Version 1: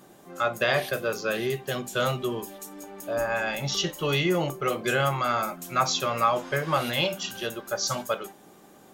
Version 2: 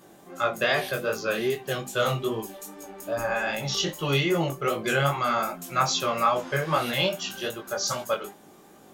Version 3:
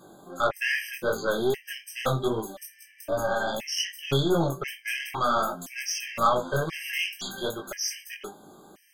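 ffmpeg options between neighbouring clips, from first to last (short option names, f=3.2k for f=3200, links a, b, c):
-af "flanger=delay=18:depth=4.5:speed=2.5,volume=3.5dB"
-af "aeval=exprs='0.316*(cos(1*acos(clip(val(0)/0.316,-1,1)))-cos(1*PI/2))+0.0316*(cos(3*acos(clip(val(0)/0.316,-1,1)))-cos(3*PI/2))+0.02*(cos(5*acos(clip(val(0)/0.316,-1,1)))-cos(5*PI/2))+0.0178*(cos(8*acos(clip(val(0)/0.316,-1,1)))-cos(8*PI/2))':c=same,afftfilt=real='re*gt(sin(2*PI*0.97*pts/sr)*(1-2*mod(floor(b*sr/1024/1600),2)),0)':imag='im*gt(sin(2*PI*0.97*pts/sr)*(1-2*mod(floor(b*sr/1024/1600),2)),0)':win_size=1024:overlap=0.75,volume=1.5dB"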